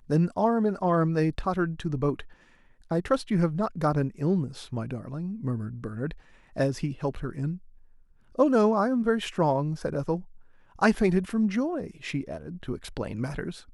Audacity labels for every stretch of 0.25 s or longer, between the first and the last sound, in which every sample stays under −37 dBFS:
2.230000	2.910000	silence
6.130000	6.560000	silence
7.570000	8.380000	silence
10.200000	10.790000	silence